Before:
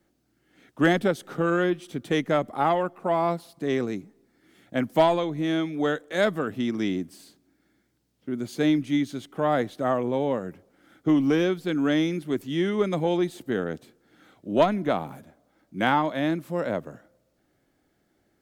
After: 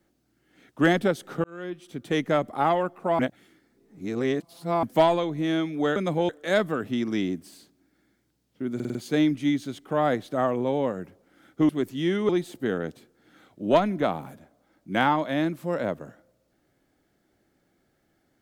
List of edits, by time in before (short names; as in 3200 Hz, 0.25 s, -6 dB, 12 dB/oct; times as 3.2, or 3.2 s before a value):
1.44–2.23 fade in
3.19–4.83 reverse
8.42 stutter 0.05 s, 5 plays
11.16–12.22 cut
12.82–13.15 move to 5.96